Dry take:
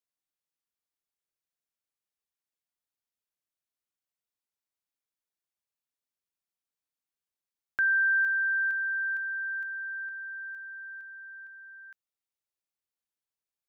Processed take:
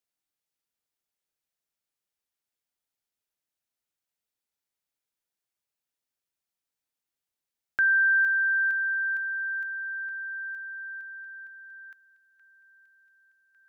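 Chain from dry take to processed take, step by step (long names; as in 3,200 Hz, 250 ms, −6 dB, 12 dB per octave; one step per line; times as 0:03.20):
notch filter 1,100 Hz
on a send: delay with a high-pass on its return 1,152 ms, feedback 72%, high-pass 1,800 Hz, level −22.5 dB
on the sum: level +3 dB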